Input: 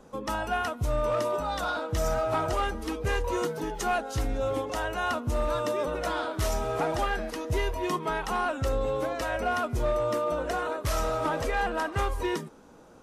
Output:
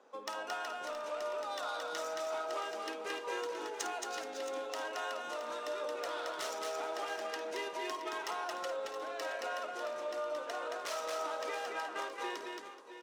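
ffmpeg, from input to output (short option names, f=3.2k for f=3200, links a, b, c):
-filter_complex "[0:a]highpass=f=170:w=0.5412,highpass=f=170:w=1.3066,acrossover=split=330[a][b];[a]aderivative[c];[b]adynamicsmooth=sensitivity=5.5:basefreq=3.1k[d];[c][d]amix=inputs=2:normalize=0,asettb=1/sr,asplit=3[e][f][g];[e]atrim=end=8.204[h];[f]atrim=start=8.2:end=8.8,asetpts=PTS-STARTPTS,afade=t=in:d=0.004:c=qsin,afade=t=out:st=0.596:d=0.004:c=qsin,aecho=1:1:5.8:0.87,atrim=end_sample=26460[i];[g]atrim=start=8.796[j];[h][i]acrossfade=d=0.004:c1=hsin:c2=qsin[k];[k][j]acrossfade=d=0.004:c1=qsin:c2=hsin,acompressor=threshold=-32dB:ratio=6,highshelf=f=3k:g=11,asplit=2[l][m];[m]aecho=0:1:52|223|427|653|672|730:0.282|0.708|0.15|0.119|0.266|0.1[n];[l][n]amix=inputs=2:normalize=0,volume=-7dB"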